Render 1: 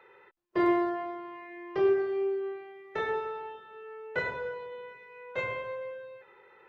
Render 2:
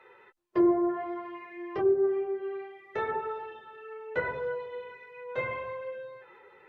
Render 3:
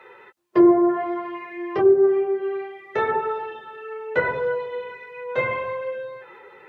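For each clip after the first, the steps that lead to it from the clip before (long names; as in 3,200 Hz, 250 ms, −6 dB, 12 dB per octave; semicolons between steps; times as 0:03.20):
treble cut that deepens with the level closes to 660 Hz, closed at −22.5 dBFS; multi-voice chorus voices 4, 0.59 Hz, delay 11 ms, depth 3.3 ms; dynamic equaliser 3,500 Hz, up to −4 dB, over −52 dBFS, Q 0.82; level +4.5 dB
high-pass filter 90 Hz; level +9 dB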